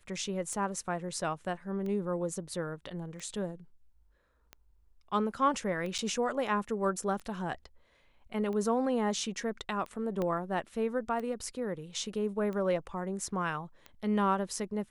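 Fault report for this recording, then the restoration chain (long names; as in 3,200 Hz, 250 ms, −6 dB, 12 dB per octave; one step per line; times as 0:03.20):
scratch tick 45 rpm −28 dBFS
0:05.98–0:05.99: drop-out 7.2 ms
0:10.22: click −21 dBFS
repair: click removal
repair the gap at 0:05.98, 7.2 ms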